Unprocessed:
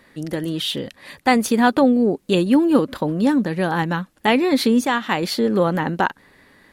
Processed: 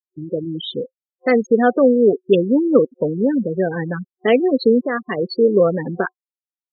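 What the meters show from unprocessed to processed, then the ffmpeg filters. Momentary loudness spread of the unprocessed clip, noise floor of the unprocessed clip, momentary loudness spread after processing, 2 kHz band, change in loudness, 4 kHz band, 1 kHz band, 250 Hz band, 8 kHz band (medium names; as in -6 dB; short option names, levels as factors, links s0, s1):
9 LU, -60 dBFS, 12 LU, -3.0 dB, +1.5 dB, -6.5 dB, -5.0 dB, -1.0 dB, under -20 dB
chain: -af "afftfilt=real='re*gte(hypot(re,im),0.224)':imag='im*gte(hypot(re,im),0.224)':win_size=1024:overlap=0.75,superequalizer=7b=2.82:8b=1.58:9b=0.251,volume=0.891"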